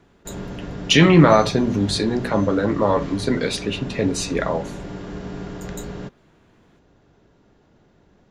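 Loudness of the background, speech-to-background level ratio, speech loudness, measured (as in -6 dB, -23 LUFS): -33.0 LUFS, 14.0 dB, -19.0 LUFS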